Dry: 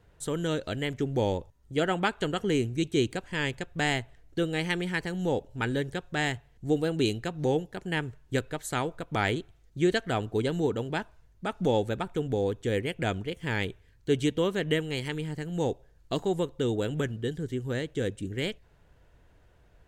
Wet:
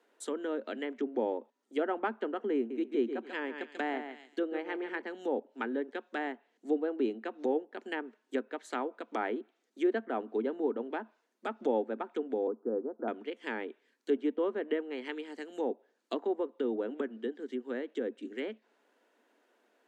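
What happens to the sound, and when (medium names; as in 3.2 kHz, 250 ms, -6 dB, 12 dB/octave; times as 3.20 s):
2.56–5.02 s: feedback delay 140 ms, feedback 20%, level -8.5 dB
12.47–13.08 s: steep low-pass 1.4 kHz 72 dB/octave
whole clip: Chebyshev high-pass 220 Hz, order 8; low-pass that closes with the level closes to 1.3 kHz, closed at -27.5 dBFS; trim -3 dB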